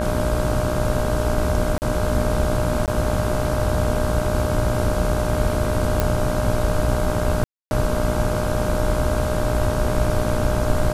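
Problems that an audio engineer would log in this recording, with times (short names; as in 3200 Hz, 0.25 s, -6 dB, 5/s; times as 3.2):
buzz 60 Hz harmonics 27 -26 dBFS
tone 610 Hz -25 dBFS
1.78–1.82 gap 39 ms
2.86–2.88 gap 18 ms
6 pop -5 dBFS
7.44–7.71 gap 0.271 s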